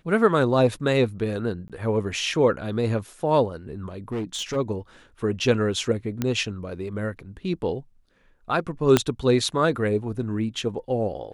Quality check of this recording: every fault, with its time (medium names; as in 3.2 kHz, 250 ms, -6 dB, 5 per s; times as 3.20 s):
1.68–1.70 s: dropout 17 ms
4.12–4.57 s: clipped -24.5 dBFS
6.22 s: pop -11 dBFS
8.97 s: pop -3 dBFS